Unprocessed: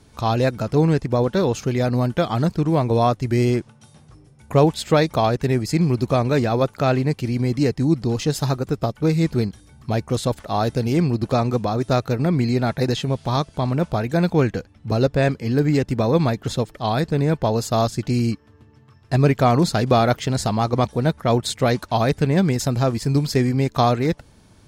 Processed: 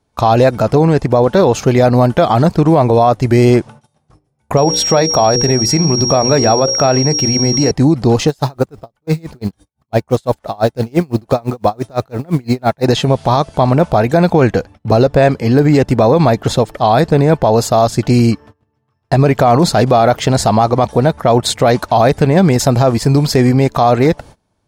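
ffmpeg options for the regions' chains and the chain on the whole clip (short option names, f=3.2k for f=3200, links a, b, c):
-filter_complex "[0:a]asettb=1/sr,asplit=3[a][b][c];[a]atrim=end=4.574[d];[b]atrim=start=4.57:end=7.71,asetpts=PTS-STARTPTS,afade=t=in:d=0.004:c=qsin,afade=t=out:st=3.136:d=0.004:c=qsin,bandreject=f=60:t=h:w=6,bandreject=f=120:t=h:w=6,bandreject=f=180:t=h:w=6,bandreject=f=240:t=h:w=6,bandreject=f=300:t=h:w=6,bandreject=f=360:t=h:w=6,bandreject=f=420:t=h:w=6,bandreject=f=480:t=h:w=6,bandreject=f=540:t=h:w=6,aeval=exprs='val(0)+0.0708*sin(2*PI*5600*n/s)':c=same,acompressor=threshold=-18dB:ratio=4:attack=3.2:release=140:knee=1:detection=peak[e];[c]atrim=start=7.706[f];[d][e]acrossfade=d=0.004:c1=hsin:c2=qsin[g];[g][f]acrossfade=d=0.004:c1=qsin:c2=hsin,asettb=1/sr,asplit=3[h][i][j];[h]atrim=end=8.284[k];[i]atrim=start=8.28:end=12.85,asetpts=PTS-STARTPTS,afade=t=in:d=0.004:c=qsin,afade=t=out:st=4.566:d=0.004:c=qsin,acrusher=bits=7:mode=log:mix=0:aa=0.000001,aeval=exprs='val(0)*pow(10,-34*(0.5-0.5*cos(2*PI*5.9*n/s))/20)':c=same[l];[j]atrim=start=12.846[m];[k][l]acrossfade=d=0.004:c1=hsin:c2=qsin[n];[n][m]acrossfade=d=0.004:c1=qsin:c2=hsin,agate=range=-25dB:threshold=-43dB:ratio=16:detection=peak,equalizer=f=730:w=1:g=8,alimiter=level_in=10dB:limit=-1dB:release=50:level=0:latency=1,volume=-1dB"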